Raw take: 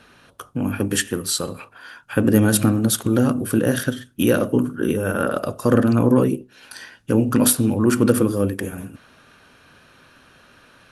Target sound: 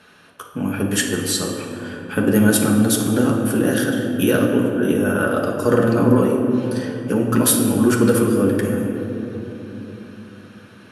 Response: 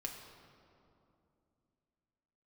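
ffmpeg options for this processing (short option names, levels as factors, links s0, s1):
-filter_complex "[0:a]highpass=f=130:p=1[s0];[1:a]atrim=start_sample=2205,asetrate=27342,aresample=44100[s1];[s0][s1]afir=irnorm=-1:irlink=0,volume=1.12"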